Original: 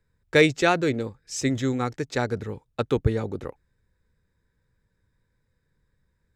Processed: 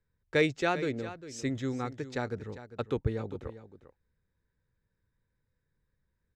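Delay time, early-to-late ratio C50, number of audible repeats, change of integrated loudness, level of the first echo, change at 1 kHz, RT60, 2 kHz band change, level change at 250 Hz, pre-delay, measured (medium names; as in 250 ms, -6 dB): 400 ms, no reverb, 1, -8.5 dB, -14.0 dB, -8.0 dB, no reverb, -8.5 dB, -8.0 dB, no reverb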